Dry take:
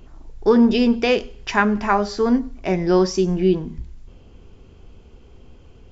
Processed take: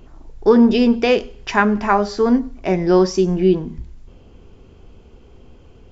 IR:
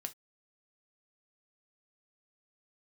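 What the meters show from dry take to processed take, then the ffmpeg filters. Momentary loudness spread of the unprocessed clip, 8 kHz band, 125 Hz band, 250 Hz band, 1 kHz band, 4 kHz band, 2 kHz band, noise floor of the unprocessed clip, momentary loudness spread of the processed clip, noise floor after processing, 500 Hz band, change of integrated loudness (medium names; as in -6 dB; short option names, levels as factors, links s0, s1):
8 LU, no reading, +2.0 dB, +2.5 dB, +2.5 dB, +0.5 dB, +1.5 dB, -47 dBFS, 8 LU, -46 dBFS, +3.0 dB, +2.5 dB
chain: -af "equalizer=f=490:w=0.34:g=3"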